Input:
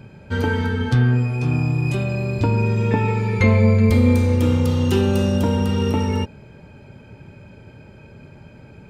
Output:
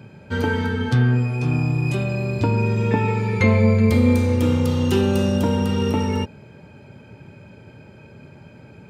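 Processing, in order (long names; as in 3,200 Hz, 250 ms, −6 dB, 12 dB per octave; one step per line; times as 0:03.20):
high-pass filter 88 Hz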